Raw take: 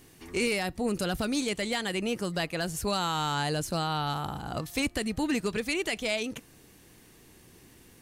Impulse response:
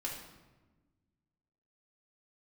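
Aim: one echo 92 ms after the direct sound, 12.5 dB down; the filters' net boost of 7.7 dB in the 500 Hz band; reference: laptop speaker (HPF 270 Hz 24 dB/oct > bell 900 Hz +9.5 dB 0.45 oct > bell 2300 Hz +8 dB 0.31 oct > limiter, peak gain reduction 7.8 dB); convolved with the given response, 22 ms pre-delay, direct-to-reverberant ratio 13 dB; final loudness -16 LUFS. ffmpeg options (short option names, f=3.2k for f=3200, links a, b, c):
-filter_complex "[0:a]equalizer=f=500:t=o:g=8.5,aecho=1:1:92:0.237,asplit=2[a][b];[1:a]atrim=start_sample=2205,adelay=22[c];[b][c]afir=irnorm=-1:irlink=0,volume=-14dB[d];[a][d]amix=inputs=2:normalize=0,highpass=f=270:w=0.5412,highpass=f=270:w=1.3066,equalizer=f=900:t=o:w=0.45:g=9.5,equalizer=f=2.3k:t=o:w=0.31:g=8,volume=12.5dB,alimiter=limit=-6dB:level=0:latency=1"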